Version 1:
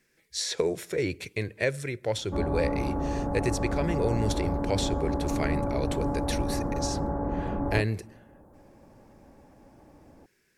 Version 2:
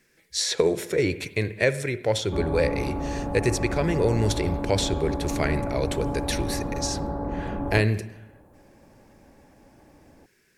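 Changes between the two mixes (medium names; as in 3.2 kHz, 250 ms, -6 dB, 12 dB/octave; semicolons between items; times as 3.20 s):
speech +4.5 dB; reverb: on, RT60 0.90 s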